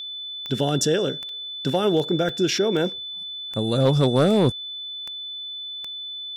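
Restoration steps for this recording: clip repair -11 dBFS; de-click; notch 3500 Hz, Q 30; interpolate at 1.29/2.29, 2.2 ms

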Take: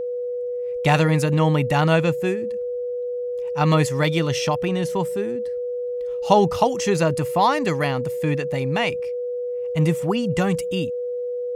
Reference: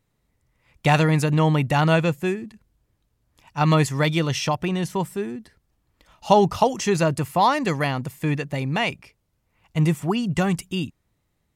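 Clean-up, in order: notch 490 Hz, Q 30

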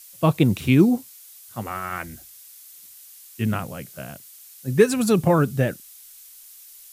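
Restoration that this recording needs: noise print and reduce 19 dB

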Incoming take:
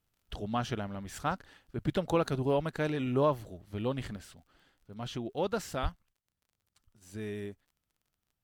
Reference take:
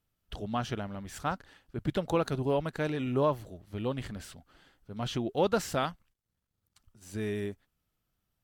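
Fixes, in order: de-click; 4.16 gain correction +5 dB; 5.82–5.94 HPF 140 Hz 24 dB/oct

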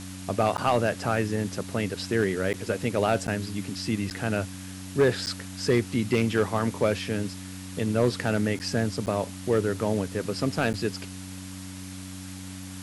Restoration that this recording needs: clip repair -14.5 dBFS; de-hum 93.7 Hz, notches 3; interpolate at 0.57/2.53/3.27/4.1/5.26/8.59/9.06/10.73, 9.2 ms; noise print and reduce 30 dB

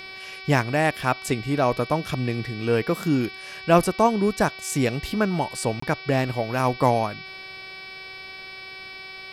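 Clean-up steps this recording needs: de-hum 379.8 Hz, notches 14; notch 2300 Hz, Q 30; interpolate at 5.8, 24 ms

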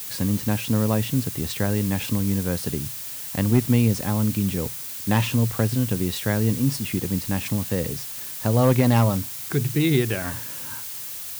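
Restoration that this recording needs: clip repair -9 dBFS; noise print and reduce 30 dB

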